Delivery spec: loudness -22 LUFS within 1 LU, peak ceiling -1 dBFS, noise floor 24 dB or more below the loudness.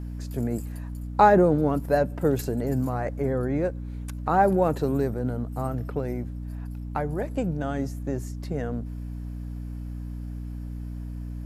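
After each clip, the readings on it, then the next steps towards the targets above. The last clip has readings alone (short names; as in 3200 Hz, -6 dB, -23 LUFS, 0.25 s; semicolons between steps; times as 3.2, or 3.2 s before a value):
hum 60 Hz; harmonics up to 300 Hz; hum level -31 dBFS; loudness -27.0 LUFS; peak -5.5 dBFS; loudness target -22.0 LUFS
-> de-hum 60 Hz, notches 5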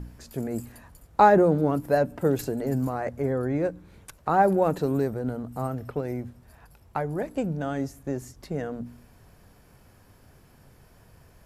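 hum none; loudness -26.0 LUFS; peak -6.0 dBFS; loudness target -22.0 LUFS
-> gain +4 dB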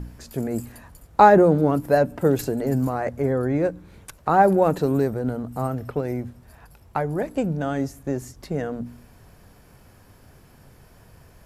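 loudness -22.0 LUFS; peak -2.0 dBFS; noise floor -52 dBFS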